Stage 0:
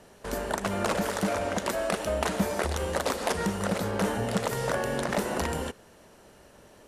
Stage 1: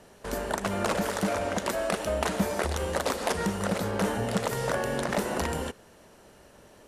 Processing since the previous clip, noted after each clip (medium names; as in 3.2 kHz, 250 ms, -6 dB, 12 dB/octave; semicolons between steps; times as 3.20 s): no audible change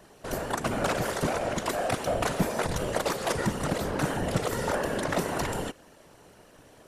whisper effect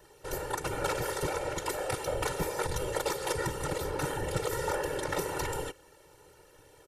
treble shelf 10 kHz +6.5 dB; comb 2.2 ms, depth 94%; trim -6.5 dB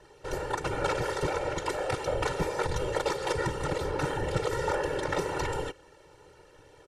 distance through air 73 m; trim +3 dB